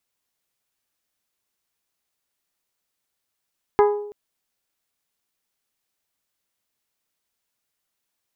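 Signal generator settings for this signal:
struck glass bell, length 0.33 s, lowest mode 414 Hz, modes 6, decay 0.77 s, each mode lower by 4.5 dB, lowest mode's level −11 dB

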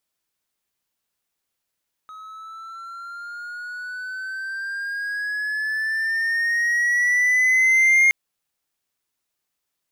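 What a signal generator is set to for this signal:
pitch glide with a swell triangle, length 6.02 s, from 1,270 Hz, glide +9 semitones, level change +25 dB, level −10 dB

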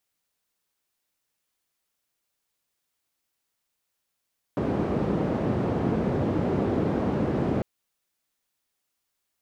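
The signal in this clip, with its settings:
band-limited noise 98–360 Hz, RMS −25.5 dBFS 3.05 s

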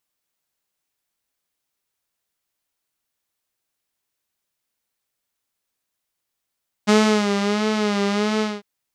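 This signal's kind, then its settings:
subtractive patch with vibrato G#4, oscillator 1 saw, oscillator 2 square, interval 0 semitones, detune 23 cents, sub −1 dB, filter lowpass, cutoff 4,700 Hz, Q 1.2, filter envelope 0.5 octaves, filter decay 0.72 s, attack 23 ms, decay 0.37 s, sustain −7 dB, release 0.21 s, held 1.54 s, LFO 1.5 Hz, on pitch 65 cents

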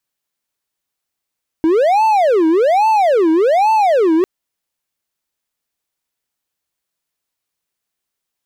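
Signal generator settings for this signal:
siren wail 317–885 Hz 1.2 per second triangle −7.5 dBFS 2.60 s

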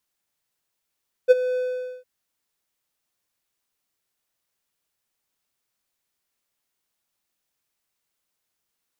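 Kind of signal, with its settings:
note with an ADSR envelope triangle 504 Hz, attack 30 ms, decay 25 ms, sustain −14.5 dB, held 0.28 s, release 478 ms −5 dBFS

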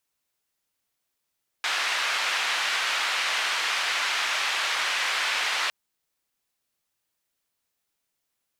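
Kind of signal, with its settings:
band-limited noise 1,100–2,900 Hz, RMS −26.5 dBFS 4.06 s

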